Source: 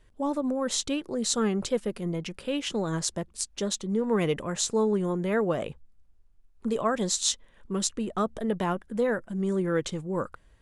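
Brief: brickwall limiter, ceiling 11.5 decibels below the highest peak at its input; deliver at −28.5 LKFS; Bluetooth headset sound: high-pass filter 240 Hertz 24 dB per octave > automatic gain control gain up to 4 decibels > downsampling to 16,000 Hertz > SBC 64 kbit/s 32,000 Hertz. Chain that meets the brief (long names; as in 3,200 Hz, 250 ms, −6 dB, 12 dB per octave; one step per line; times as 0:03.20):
brickwall limiter −20.5 dBFS
high-pass filter 240 Hz 24 dB per octave
automatic gain control gain up to 4 dB
downsampling to 16,000 Hz
level +4 dB
SBC 64 kbit/s 32,000 Hz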